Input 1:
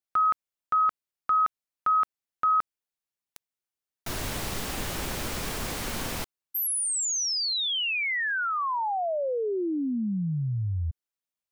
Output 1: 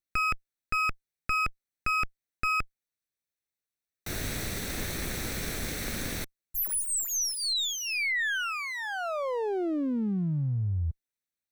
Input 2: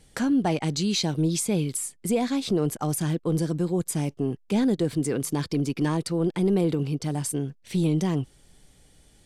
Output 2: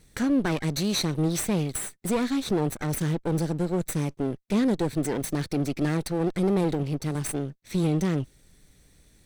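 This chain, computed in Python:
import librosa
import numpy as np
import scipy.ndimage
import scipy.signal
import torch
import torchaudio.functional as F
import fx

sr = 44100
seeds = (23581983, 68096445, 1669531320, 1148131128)

y = fx.lower_of_two(x, sr, delay_ms=0.49)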